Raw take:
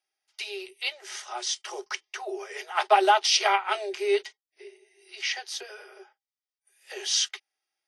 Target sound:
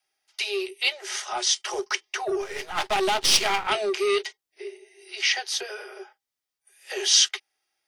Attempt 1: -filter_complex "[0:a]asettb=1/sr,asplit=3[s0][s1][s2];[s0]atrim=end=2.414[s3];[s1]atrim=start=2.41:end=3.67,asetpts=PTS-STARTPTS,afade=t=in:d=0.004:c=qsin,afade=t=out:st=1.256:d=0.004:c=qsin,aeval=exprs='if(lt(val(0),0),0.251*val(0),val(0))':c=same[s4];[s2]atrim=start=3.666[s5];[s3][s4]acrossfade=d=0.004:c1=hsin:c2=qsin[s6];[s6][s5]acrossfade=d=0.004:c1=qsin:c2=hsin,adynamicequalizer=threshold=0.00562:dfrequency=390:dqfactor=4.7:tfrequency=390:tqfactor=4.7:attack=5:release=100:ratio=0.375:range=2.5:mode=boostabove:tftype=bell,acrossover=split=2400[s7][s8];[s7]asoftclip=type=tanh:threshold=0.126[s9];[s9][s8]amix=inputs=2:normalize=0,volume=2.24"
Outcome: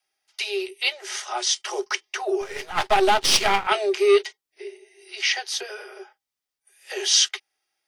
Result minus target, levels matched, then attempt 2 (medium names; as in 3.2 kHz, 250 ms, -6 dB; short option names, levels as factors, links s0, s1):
saturation: distortion -8 dB
-filter_complex "[0:a]asettb=1/sr,asplit=3[s0][s1][s2];[s0]atrim=end=2.414[s3];[s1]atrim=start=2.41:end=3.67,asetpts=PTS-STARTPTS,afade=t=in:d=0.004:c=qsin,afade=t=out:st=1.256:d=0.004:c=qsin,aeval=exprs='if(lt(val(0),0),0.251*val(0),val(0))':c=same[s4];[s2]atrim=start=3.666[s5];[s3][s4]acrossfade=d=0.004:c1=hsin:c2=qsin[s6];[s6][s5]acrossfade=d=0.004:c1=qsin:c2=hsin,adynamicequalizer=threshold=0.00562:dfrequency=390:dqfactor=4.7:tfrequency=390:tqfactor=4.7:attack=5:release=100:ratio=0.375:range=2.5:mode=boostabove:tftype=bell,acrossover=split=2400[s7][s8];[s7]asoftclip=type=tanh:threshold=0.0398[s9];[s9][s8]amix=inputs=2:normalize=0,volume=2.24"